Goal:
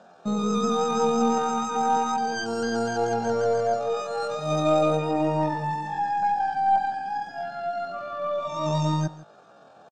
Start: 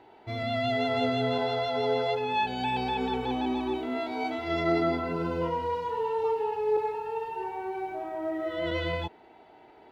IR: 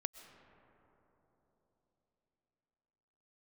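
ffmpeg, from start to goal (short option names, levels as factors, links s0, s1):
-filter_complex "[0:a]highpass=f=82:w=0.5412,highpass=f=82:w=1.3066,aemphasis=mode=reproduction:type=riaa,aeval=exprs='0.251*(cos(1*acos(clip(val(0)/0.251,-1,1)))-cos(1*PI/2))+0.0126*(cos(4*acos(clip(val(0)/0.251,-1,1)))-cos(4*PI/2))':c=same,equalizer=f=400:t=o:w=0.67:g=3,equalizer=f=1000:t=o:w=0.67:g=-10,equalizer=f=4000:t=o:w=0.67:g=6,asetrate=80880,aresample=44100,atempo=0.545254,asplit=2[s0][s1];[s1]aecho=0:1:160:0.112[s2];[s0][s2]amix=inputs=2:normalize=0"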